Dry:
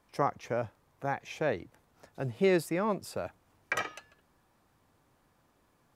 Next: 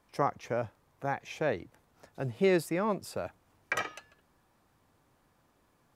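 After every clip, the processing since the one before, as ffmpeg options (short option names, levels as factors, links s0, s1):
-af anull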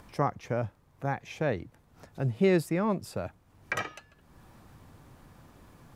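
-af "acompressor=mode=upward:threshold=0.00501:ratio=2.5,bass=f=250:g=8,treble=f=4000:g=-1"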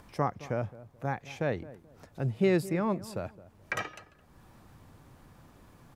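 -filter_complex "[0:a]asplit=2[s0][s1];[s1]adelay=216,lowpass=f=960:p=1,volume=0.15,asplit=2[s2][s3];[s3]adelay=216,lowpass=f=960:p=1,volume=0.29,asplit=2[s4][s5];[s5]adelay=216,lowpass=f=960:p=1,volume=0.29[s6];[s0][s2][s4][s6]amix=inputs=4:normalize=0,volume=0.841"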